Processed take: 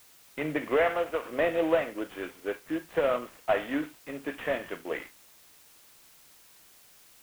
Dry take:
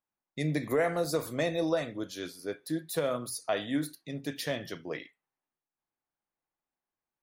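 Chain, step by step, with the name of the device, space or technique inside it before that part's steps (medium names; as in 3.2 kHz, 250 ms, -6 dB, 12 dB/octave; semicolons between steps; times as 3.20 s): 0.76–1.24 s: high-pass 330 Hz -> 840 Hz 6 dB/octave; army field radio (band-pass 370–2800 Hz; CVSD coder 16 kbps; white noise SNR 25 dB); trim +6 dB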